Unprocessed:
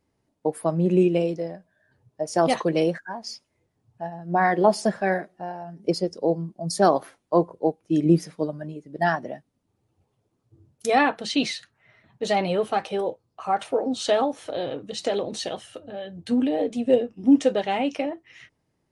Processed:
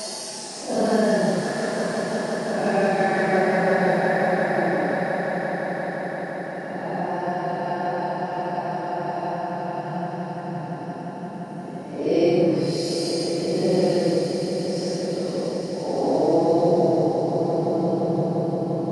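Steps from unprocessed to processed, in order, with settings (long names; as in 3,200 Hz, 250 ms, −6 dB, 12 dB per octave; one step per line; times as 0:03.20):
compressor on every frequency bin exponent 0.6
extreme stretch with random phases 11×, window 0.05 s, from 0:04.78
echo that builds up and dies away 173 ms, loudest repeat 5, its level −11.5 dB
level −4 dB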